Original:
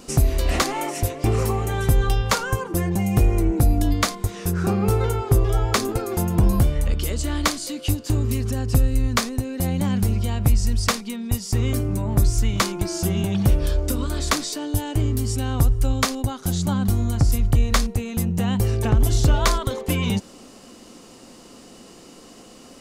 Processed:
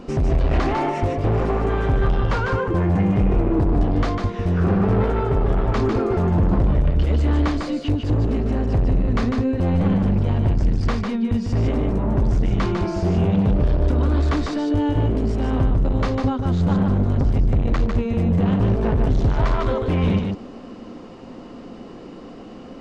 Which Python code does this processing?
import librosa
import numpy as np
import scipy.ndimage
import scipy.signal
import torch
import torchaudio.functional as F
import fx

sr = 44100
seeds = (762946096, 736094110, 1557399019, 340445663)

y = np.clip(x, -10.0 ** (-24.0 / 20.0), 10.0 ** (-24.0 / 20.0))
y = fx.spacing_loss(y, sr, db_at_10k=36)
y = y + 10.0 ** (-4.5 / 20.0) * np.pad(y, (int(150 * sr / 1000.0), 0))[:len(y)]
y = F.gain(torch.from_numpy(y), 8.0).numpy()